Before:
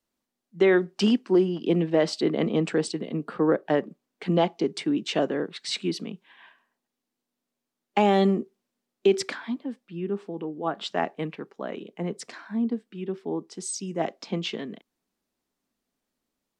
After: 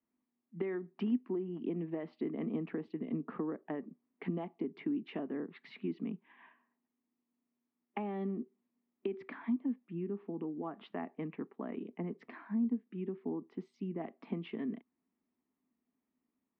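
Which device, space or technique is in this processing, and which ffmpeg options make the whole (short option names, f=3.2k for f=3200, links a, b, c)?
bass amplifier: -af "acompressor=threshold=-32dB:ratio=5,highpass=85,equalizer=f=130:t=q:w=4:g=-5,equalizer=f=250:t=q:w=4:g=8,equalizer=f=540:t=q:w=4:g=-9,equalizer=f=780:t=q:w=4:g=-3,equalizer=f=1.5k:t=q:w=4:g=-9,lowpass=f=2.1k:w=0.5412,lowpass=f=2.1k:w=1.3066,volume=-3dB"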